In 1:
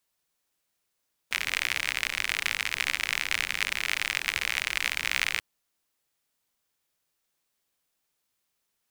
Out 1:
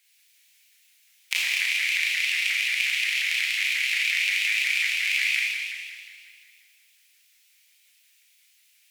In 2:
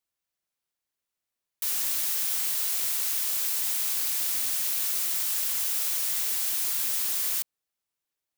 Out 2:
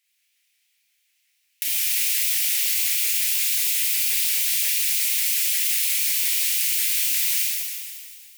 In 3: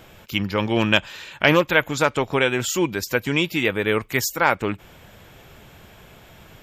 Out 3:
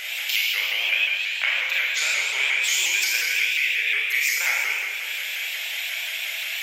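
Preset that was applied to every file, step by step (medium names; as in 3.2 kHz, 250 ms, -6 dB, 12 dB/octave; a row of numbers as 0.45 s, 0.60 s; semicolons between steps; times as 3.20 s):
resonant high shelf 1.6 kHz +12 dB, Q 3; gain riding 0.5 s; reverb removal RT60 0.52 s; compression 8:1, threshold -26 dBFS; high-pass 690 Hz 24 dB/octave; Schroeder reverb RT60 2.1 s, combs from 27 ms, DRR -6.5 dB; vibrato with a chosen wave saw up 5.6 Hz, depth 100 cents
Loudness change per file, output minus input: +5.0 LU, +5.5 LU, -0.5 LU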